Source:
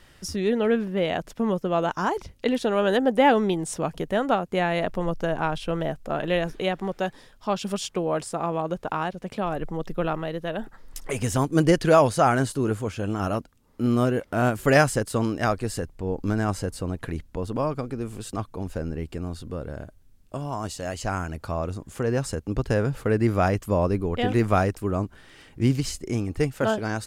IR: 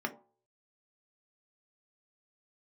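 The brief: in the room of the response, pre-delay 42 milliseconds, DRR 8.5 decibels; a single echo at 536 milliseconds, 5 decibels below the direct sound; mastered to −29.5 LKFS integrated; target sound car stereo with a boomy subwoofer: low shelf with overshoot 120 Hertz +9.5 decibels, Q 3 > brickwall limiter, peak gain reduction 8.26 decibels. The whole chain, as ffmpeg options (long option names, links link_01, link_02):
-filter_complex "[0:a]aecho=1:1:536:0.562,asplit=2[link_01][link_02];[1:a]atrim=start_sample=2205,adelay=42[link_03];[link_02][link_03]afir=irnorm=-1:irlink=0,volume=-13dB[link_04];[link_01][link_04]amix=inputs=2:normalize=0,lowshelf=frequency=120:width_type=q:width=3:gain=9.5,volume=-6.5dB,alimiter=limit=-18.5dB:level=0:latency=1"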